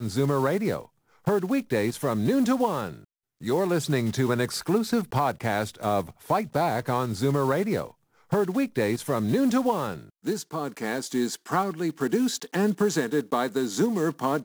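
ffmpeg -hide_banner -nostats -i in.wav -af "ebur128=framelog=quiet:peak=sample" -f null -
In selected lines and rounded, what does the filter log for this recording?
Integrated loudness:
  I:         -26.3 LUFS
  Threshold: -36.5 LUFS
Loudness range:
  LRA:         1.4 LU
  Threshold: -46.6 LUFS
  LRA low:   -27.3 LUFS
  LRA high:  -26.0 LUFS
Sample peak:
  Peak:      -12.5 dBFS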